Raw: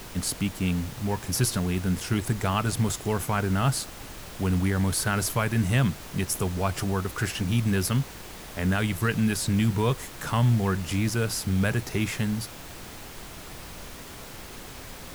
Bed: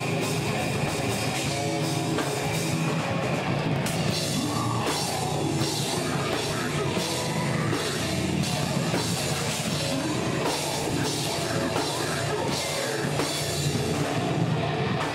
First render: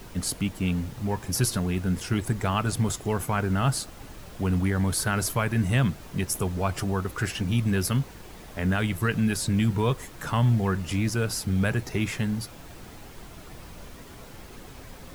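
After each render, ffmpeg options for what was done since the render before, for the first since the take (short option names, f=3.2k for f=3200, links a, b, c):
-af "afftdn=nr=7:nf=-42"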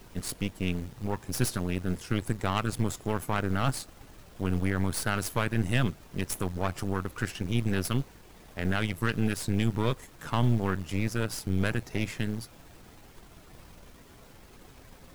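-af "aeval=exprs='0.282*(cos(1*acos(clip(val(0)/0.282,-1,1)))-cos(1*PI/2))+0.0562*(cos(3*acos(clip(val(0)/0.282,-1,1)))-cos(3*PI/2))+0.0224*(cos(6*acos(clip(val(0)/0.282,-1,1)))-cos(6*PI/2))':c=same"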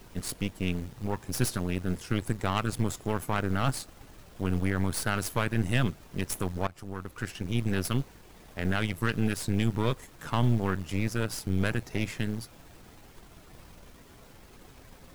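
-filter_complex "[0:a]asplit=2[a][b];[a]atrim=end=6.67,asetpts=PTS-STARTPTS,afade=t=out:st=6.666:d=0.004:c=hsin:silence=0.16788[c];[b]atrim=start=6.67,asetpts=PTS-STARTPTS,afade=t=in:d=1.34:c=qsin:silence=0.16788[d];[c][d]concat=n=2:v=0:a=1"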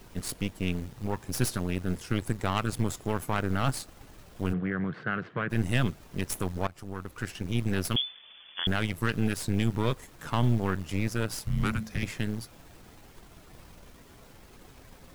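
-filter_complex "[0:a]asplit=3[a][b][c];[a]afade=t=out:st=4.52:d=0.02[d];[b]highpass=f=130:w=0.5412,highpass=f=130:w=1.3066,equalizer=f=160:t=q:w=4:g=6,equalizer=f=260:t=q:w=4:g=-6,equalizer=f=610:t=q:w=4:g=-5,equalizer=f=890:t=q:w=4:g=-10,equalizer=f=1.6k:t=q:w=4:g=3,equalizer=f=2.4k:t=q:w=4:g=-6,lowpass=f=2.5k:w=0.5412,lowpass=f=2.5k:w=1.3066,afade=t=in:st=4.52:d=0.02,afade=t=out:st=5.49:d=0.02[e];[c]afade=t=in:st=5.49:d=0.02[f];[d][e][f]amix=inputs=3:normalize=0,asettb=1/sr,asplit=3[g][h][i];[g]atrim=end=7.964[j];[h]atrim=start=7.96:end=8.67,asetpts=PTS-STARTPTS,afade=t=in:d=0.004:c=qsin,afade=t=out:st=0.706:d=0.004:c=qsin,lowpass=f=3k:t=q:w=0.5098,lowpass=f=3k:t=q:w=0.6013,lowpass=f=3k:t=q:w=0.9,lowpass=f=3k:t=q:w=2.563,afreqshift=-3500[k];[i]atrim=start=8.666[l];[j][k]acrossfade=d=0.004:c1=hsin:c2=qsin[m];[m][l]acrossfade=d=0.004:c1=qsin:c2=hsin,asettb=1/sr,asplit=3[n][o][p];[n]atrim=end=11.444[q];[o]atrim=start=11.44:end=12.03,asetpts=PTS-STARTPTS,afade=t=in:d=0.004:c=qsin,afade=t=out:st=0.586:d=0.004:c=qsin,afreqshift=-220[r];[p]atrim=start=12.026[s];[q][r]acrossfade=d=0.004:c1=hsin:c2=qsin[t];[t][s]acrossfade=d=0.004:c1=qsin:c2=hsin"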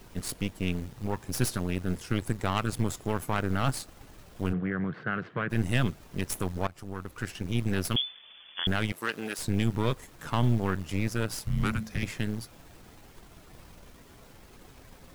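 -filter_complex "[0:a]asettb=1/sr,asplit=3[a][b][c];[a]atrim=end=4.494[d];[b]atrim=start=4.49:end=5.16,asetpts=PTS-STARTPTS,afade=t=in:d=0.004:c=qsin,afade=t=out:st=0.666:d=0.004:c=qsin,highshelf=f=5.3k:g=-7.5[e];[c]atrim=start=5.156[f];[d][e]acrossfade=d=0.004:c1=hsin:c2=qsin[g];[g][f]acrossfade=d=0.004:c1=qsin:c2=hsin,asettb=1/sr,asplit=3[h][i][j];[h]atrim=end=8.924[k];[i]atrim=start=8.92:end=9.39,asetpts=PTS-STARTPTS,afade=t=in:d=0.004:c=qsin,afade=t=out:st=0.466:d=0.004:c=qsin,highpass=380[l];[j]atrim=start=9.386[m];[k][l]acrossfade=d=0.004:c1=hsin:c2=qsin[n];[n][m]acrossfade=d=0.004:c1=qsin:c2=hsin"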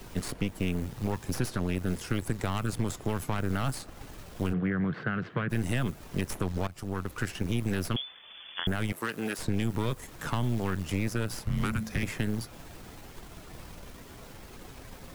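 -filter_complex "[0:a]asplit=2[a][b];[b]alimiter=limit=-19dB:level=0:latency=1:release=23,volume=-1.5dB[c];[a][c]amix=inputs=2:normalize=0,acrossover=split=230|2400|7100[d][e][f][g];[d]acompressor=threshold=-28dB:ratio=4[h];[e]acompressor=threshold=-32dB:ratio=4[i];[f]acompressor=threshold=-45dB:ratio=4[j];[g]acompressor=threshold=-45dB:ratio=4[k];[h][i][j][k]amix=inputs=4:normalize=0"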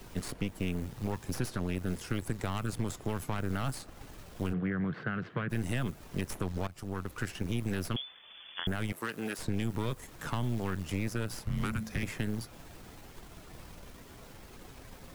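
-af "volume=-3.5dB"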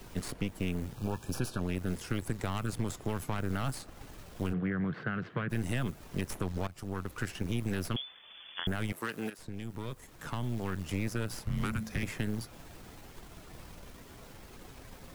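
-filter_complex "[0:a]asettb=1/sr,asplit=3[a][b][c];[a]atrim=end=0.954[d];[b]atrim=start=0.95:end=1.62,asetpts=PTS-STARTPTS,afade=t=in:d=0.004:c=qsin,afade=t=out:st=0.666:d=0.004:c=qsin,asuperstop=centerf=2000:order=20:qfactor=4[e];[c]atrim=start=1.616[f];[d][e]acrossfade=d=0.004:c1=hsin:c2=qsin[g];[g][f]acrossfade=d=0.004:c1=qsin:c2=hsin,asplit=2[h][i];[h]atrim=end=9.3,asetpts=PTS-STARTPTS,afade=t=out:st=9.296:d=0.004:c=hsin:silence=0.251189[j];[i]atrim=start=9.3,asetpts=PTS-STARTPTS,afade=t=in:d=1.69:silence=0.251189[k];[j][k]concat=n=2:v=0:a=1"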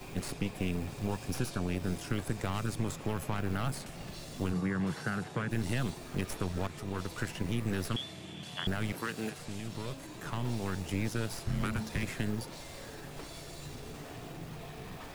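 -filter_complex "[1:a]volume=-20dB[a];[0:a][a]amix=inputs=2:normalize=0"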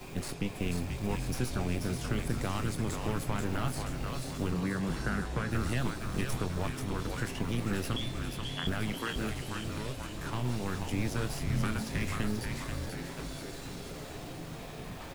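-filter_complex "[0:a]asplit=2[a][b];[b]adelay=24,volume=-12dB[c];[a][c]amix=inputs=2:normalize=0,asplit=8[d][e][f][g][h][i][j][k];[e]adelay=485,afreqshift=-130,volume=-4.5dB[l];[f]adelay=970,afreqshift=-260,volume=-10dB[m];[g]adelay=1455,afreqshift=-390,volume=-15.5dB[n];[h]adelay=1940,afreqshift=-520,volume=-21dB[o];[i]adelay=2425,afreqshift=-650,volume=-26.6dB[p];[j]adelay=2910,afreqshift=-780,volume=-32.1dB[q];[k]adelay=3395,afreqshift=-910,volume=-37.6dB[r];[d][l][m][n][o][p][q][r]amix=inputs=8:normalize=0"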